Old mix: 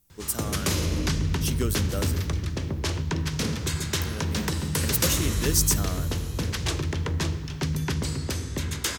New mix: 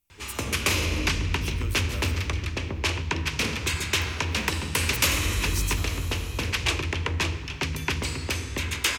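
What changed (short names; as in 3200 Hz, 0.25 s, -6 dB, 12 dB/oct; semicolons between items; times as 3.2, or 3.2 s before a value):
speech -11.0 dB; master: add fifteen-band EQ 160 Hz -9 dB, 1000 Hz +4 dB, 2500 Hz +12 dB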